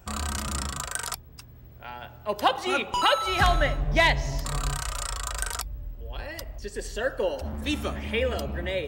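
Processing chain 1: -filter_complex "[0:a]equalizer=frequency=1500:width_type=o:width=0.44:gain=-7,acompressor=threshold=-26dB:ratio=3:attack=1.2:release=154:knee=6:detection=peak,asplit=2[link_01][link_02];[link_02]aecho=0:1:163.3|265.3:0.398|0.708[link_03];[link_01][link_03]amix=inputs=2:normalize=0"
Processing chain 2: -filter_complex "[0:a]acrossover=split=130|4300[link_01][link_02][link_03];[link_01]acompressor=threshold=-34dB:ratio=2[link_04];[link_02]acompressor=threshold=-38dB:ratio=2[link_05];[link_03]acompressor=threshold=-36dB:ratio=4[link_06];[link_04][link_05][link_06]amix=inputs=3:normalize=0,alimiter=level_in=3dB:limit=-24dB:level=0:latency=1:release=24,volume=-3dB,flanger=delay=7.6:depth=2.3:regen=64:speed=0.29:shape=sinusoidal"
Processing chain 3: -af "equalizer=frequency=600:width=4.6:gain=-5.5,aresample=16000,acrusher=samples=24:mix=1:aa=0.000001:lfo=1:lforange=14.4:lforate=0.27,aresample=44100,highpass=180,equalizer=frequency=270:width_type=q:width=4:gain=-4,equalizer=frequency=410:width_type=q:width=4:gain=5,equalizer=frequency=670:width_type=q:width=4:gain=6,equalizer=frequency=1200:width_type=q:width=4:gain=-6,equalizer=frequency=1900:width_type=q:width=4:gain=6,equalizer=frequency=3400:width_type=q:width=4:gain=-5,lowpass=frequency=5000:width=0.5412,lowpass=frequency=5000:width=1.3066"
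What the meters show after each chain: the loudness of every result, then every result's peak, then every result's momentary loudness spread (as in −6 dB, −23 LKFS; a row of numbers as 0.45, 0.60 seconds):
−31.0, −42.0, −31.0 LKFS; −14.5, −29.0, −7.5 dBFS; 10, 7, 17 LU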